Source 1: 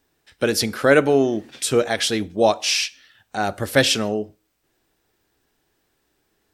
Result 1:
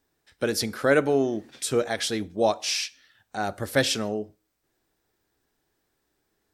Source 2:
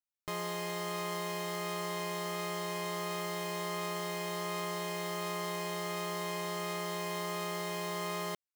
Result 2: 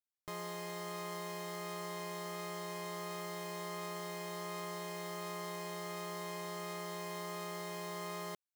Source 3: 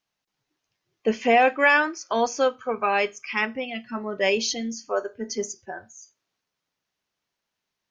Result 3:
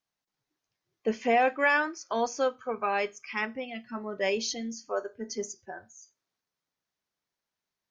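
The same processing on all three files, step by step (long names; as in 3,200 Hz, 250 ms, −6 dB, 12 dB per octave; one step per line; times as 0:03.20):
parametric band 2,800 Hz −4 dB 0.5 octaves
level −5.5 dB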